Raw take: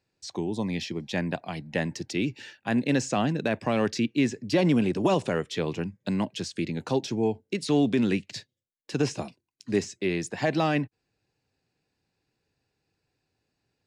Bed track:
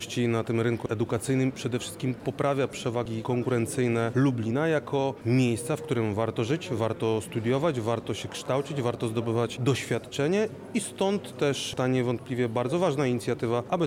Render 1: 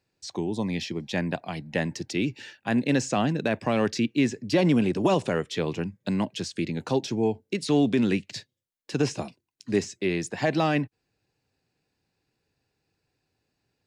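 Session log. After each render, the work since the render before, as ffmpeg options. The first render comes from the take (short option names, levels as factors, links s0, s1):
-af "volume=1.12"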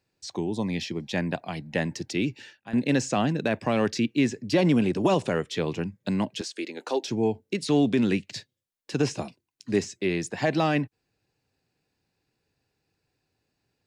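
-filter_complex "[0:a]asettb=1/sr,asplit=3[s0][s1][s2];[s0]atrim=end=6.414[s3];[s1]atrim=start=6.41:end=7.08,asetpts=PTS-STARTPTS,afade=t=in:d=0.004:c=qsin,afade=t=out:st=0.666:d=0.004:c=qsin,highpass=f=330:w=0.5412,highpass=f=330:w=1.3066[s4];[s2]atrim=start=7.076[s5];[s3][s4]acrossfade=d=0.004:c1=hsin:c2=qsin[s6];[s6][s5]acrossfade=d=0.004:c1=qsin:c2=hsin,asplit=2[s7][s8];[s7]atrim=end=2.73,asetpts=PTS-STARTPTS,afade=t=out:st=2.27:d=0.46:silence=0.177828[s9];[s8]atrim=start=2.73,asetpts=PTS-STARTPTS,afade=t=in:d=0.004:c=hsin:silence=0.177828[s10];[s9][s10]concat=n=2:v=0:a=1"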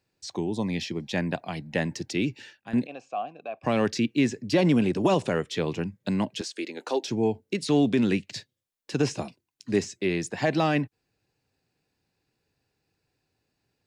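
-filter_complex "[0:a]asplit=3[s0][s1][s2];[s0]afade=t=out:st=2.85:d=0.02[s3];[s1]asplit=3[s4][s5][s6];[s4]bandpass=f=730:t=q:w=8,volume=1[s7];[s5]bandpass=f=1090:t=q:w=8,volume=0.501[s8];[s6]bandpass=f=2440:t=q:w=8,volume=0.355[s9];[s7][s8][s9]amix=inputs=3:normalize=0,afade=t=in:st=2.85:d=0.02,afade=t=out:st=3.63:d=0.02[s10];[s2]afade=t=in:st=3.63:d=0.02[s11];[s3][s10][s11]amix=inputs=3:normalize=0"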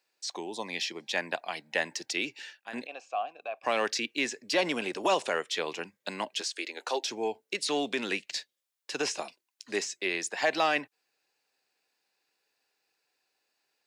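-af "highpass=510,tiltshelf=f=720:g=-3"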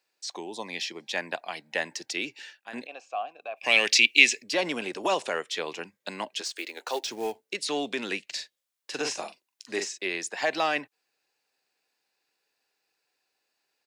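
-filter_complex "[0:a]asplit=3[s0][s1][s2];[s0]afade=t=out:st=3.56:d=0.02[s3];[s1]highshelf=f=1800:t=q:w=3:g=9.5,afade=t=in:st=3.56:d=0.02,afade=t=out:st=4.42:d=0.02[s4];[s2]afade=t=in:st=4.42:d=0.02[s5];[s3][s4][s5]amix=inputs=3:normalize=0,asettb=1/sr,asplit=3[s6][s7][s8];[s6]atrim=end=6.454[s9];[s7]atrim=start=6.45:end=7.41,asetpts=PTS-STARTPTS,afade=t=in:d=0.004:c=qsin,afade=t=out:st=0.956:d=0.004:c=qsin,acrusher=bits=4:mode=log:mix=0:aa=0.000001[s10];[s8]atrim=start=7.406[s11];[s9][s10]acrossfade=d=0.004:c1=hsin:c2=qsin[s12];[s12][s11]acrossfade=d=0.004:c1=qsin:c2=hsin,asplit=3[s13][s14][s15];[s13]afade=t=out:st=8.31:d=0.02[s16];[s14]asplit=2[s17][s18];[s18]adelay=42,volume=0.501[s19];[s17][s19]amix=inputs=2:normalize=0,afade=t=in:st=8.31:d=0.02,afade=t=out:st=9.97:d=0.02[s20];[s15]afade=t=in:st=9.97:d=0.02[s21];[s16][s20][s21]amix=inputs=3:normalize=0"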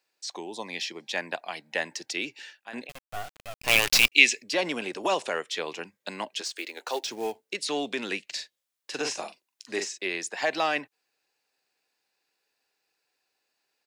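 -filter_complex "[0:a]asettb=1/sr,asplit=3[s0][s1][s2];[s0]atrim=end=2.894[s3];[s1]atrim=start=2.89:end=4.12,asetpts=PTS-STARTPTS,afade=t=in:d=0.004:c=qsin,afade=t=out:st=1.226:d=0.004:c=qsin,acrusher=bits=4:dc=4:mix=0:aa=0.000001[s4];[s2]atrim=start=4.116[s5];[s3][s4]acrossfade=d=0.004:c1=hsin:c2=qsin[s6];[s6][s5]acrossfade=d=0.004:c1=qsin:c2=hsin"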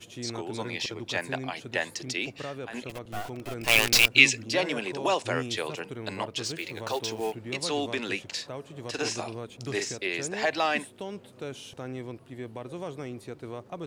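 -filter_complex "[1:a]volume=0.251[s0];[0:a][s0]amix=inputs=2:normalize=0"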